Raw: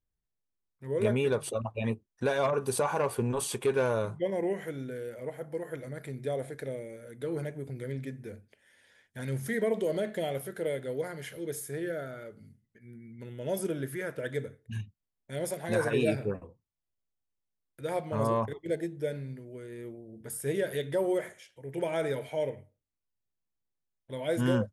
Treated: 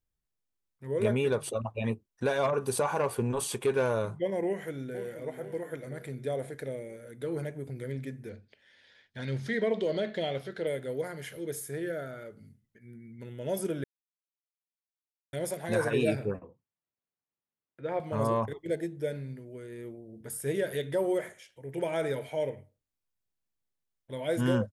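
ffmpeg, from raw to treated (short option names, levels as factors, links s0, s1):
-filter_complex "[0:a]asplit=2[s0][s1];[s1]afade=t=in:st=4.46:d=0.01,afade=t=out:st=5.1:d=0.01,aecho=0:1:480|960|1440|1920|2400|2880:0.316228|0.173925|0.0956589|0.0526124|0.0289368|0.0159152[s2];[s0][s2]amix=inputs=2:normalize=0,asettb=1/sr,asplit=3[s3][s4][s5];[s3]atrim=end=8.294[s6];[s4]atrim=start=8.29:end=10.67,asetpts=PTS-STARTPTS,afade=t=in:d=0.004:c=qsin,afade=t=out:st=2.376:d=0.004:c=qsin,lowpass=f=4300:t=q:w=2.3[s7];[s5]atrim=start=10.666[s8];[s6][s7]acrossfade=d=0.004:c1=hsin:c2=qsin[s9];[s9][s8]acrossfade=d=0.004:c1=qsin:c2=hsin,asettb=1/sr,asplit=3[s10][s11][s12];[s10]atrim=end=16.394[s13];[s11]atrim=start=16.39:end=18,asetpts=PTS-STARTPTS,afade=t=in:d=0.004:c=qsin,afade=t=out:st=1.606:d=0.004:c=qsin,highpass=130,lowpass=2400[s14];[s12]atrim=start=17.996[s15];[s13][s14]acrossfade=d=0.004:c1=hsin:c2=qsin[s16];[s16][s15]acrossfade=d=0.004:c1=qsin:c2=hsin,asplit=3[s17][s18][s19];[s17]atrim=end=13.84,asetpts=PTS-STARTPTS,afade=t=out:st=13.836:d=0.004:c=hsin[s20];[s18]atrim=start=13.84:end=15.33,asetpts=PTS-STARTPTS,volume=0[s21];[s19]atrim=start=15.33,asetpts=PTS-STARTPTS,afade=t=in:d=0.004:c=hsin[s22];[s20][s21][s22]concat=n=3:v=0:a=1"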